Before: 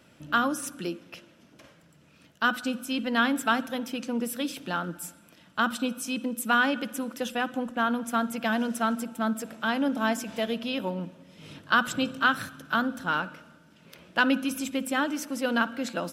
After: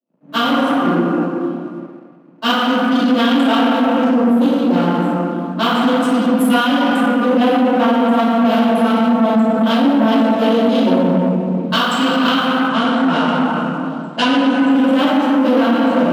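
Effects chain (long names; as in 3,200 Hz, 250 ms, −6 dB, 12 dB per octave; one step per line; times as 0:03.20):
adaptive Wiener filter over 25 samples
delay with a high-pass on its return 1,060 ms, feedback 80%, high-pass 3,000 Hz, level −24 dB
convolution reverb RT60 2.8 s, pre-delay 3 ms, DRR −17 dB
downward compressor 10 to 1, threshold −10 dBFS, peak gain reduction 9 dB
parametric band 1,800 Hz −11.5 dB 1.1 octaves
leveller curve on the samples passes 2
0:12.68–0:14.70: Chebyshev low-pass filter 10,000 Hz, order 5
dynamic equaliser 3,000 Hz, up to +6 dB, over −38 dBFS, Q 3.4
Butterworth high-pass 170 Hz
multiband upward and downward expander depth 70%
level −3 dB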